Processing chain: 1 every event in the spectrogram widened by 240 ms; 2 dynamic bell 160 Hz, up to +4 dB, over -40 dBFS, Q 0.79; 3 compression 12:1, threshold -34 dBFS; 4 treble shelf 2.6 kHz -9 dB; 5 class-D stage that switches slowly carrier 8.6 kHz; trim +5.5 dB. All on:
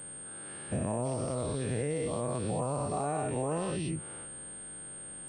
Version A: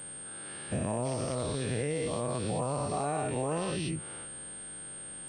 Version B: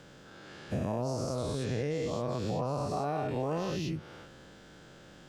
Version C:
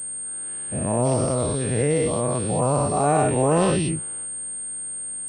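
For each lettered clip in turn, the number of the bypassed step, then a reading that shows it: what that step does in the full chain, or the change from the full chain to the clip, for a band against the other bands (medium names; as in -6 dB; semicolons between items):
4, 4 kHz band +5.5 dB; 5, 8 kHz band -12.0 dB; 3, mean gain reduction 6.5 dB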